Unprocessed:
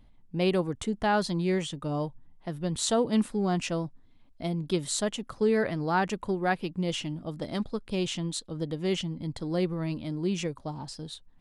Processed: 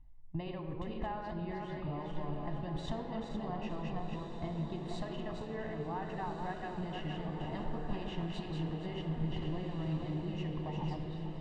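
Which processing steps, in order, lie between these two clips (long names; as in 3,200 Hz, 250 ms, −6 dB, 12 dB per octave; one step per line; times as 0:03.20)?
feedback delay that plays each chunk backwards 235 ms, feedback 54%, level −4 dB
low-pass filter 3,000 Hz 12 dB per octave
noise gate −36 dBFS, range −12 dB
parametric band 200 Hz −11.5 dB 0.62 octaves
downward compressor 6 to 1, threshold −39 dBFS, peak gain reduction 17 dB
spectral tilt −2 dB per octave
feedback delay with all-pass diffusion 1,526 ms, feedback 55%, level −7.5 dB
convolution reverb RT60 2.4 s, pre-delay 4 ms, DRR 7 dB
level −3.5 dB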